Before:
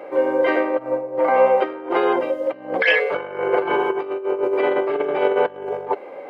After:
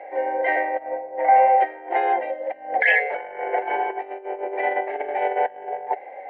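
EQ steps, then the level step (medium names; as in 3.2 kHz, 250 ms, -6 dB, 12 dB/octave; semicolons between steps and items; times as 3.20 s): two resonant band-passes 1.2 kHz, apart 1.3 oct; distance through air 71 m; +7.5 dB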